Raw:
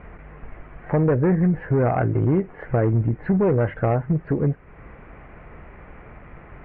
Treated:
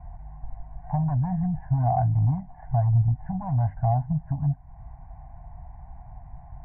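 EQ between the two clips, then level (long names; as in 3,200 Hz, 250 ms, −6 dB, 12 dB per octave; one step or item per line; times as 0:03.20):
Chebyshev band-stop filter 250–710 Hz, order 4
low-pass filter 1,100 Hz 24 dB per octave
phaser with its sweep stopped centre 530 Hz, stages 4
+4.5 dB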